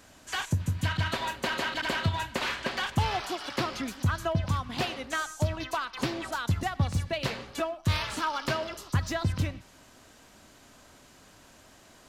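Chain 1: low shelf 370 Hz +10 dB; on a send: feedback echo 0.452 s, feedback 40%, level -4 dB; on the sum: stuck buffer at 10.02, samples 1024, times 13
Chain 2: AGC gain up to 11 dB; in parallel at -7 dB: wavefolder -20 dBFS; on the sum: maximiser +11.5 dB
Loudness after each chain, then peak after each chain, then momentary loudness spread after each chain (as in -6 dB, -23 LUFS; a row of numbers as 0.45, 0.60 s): -23.5, -9.5 LUFS; -5.0, -1.0 dBFS; 8, 21 LU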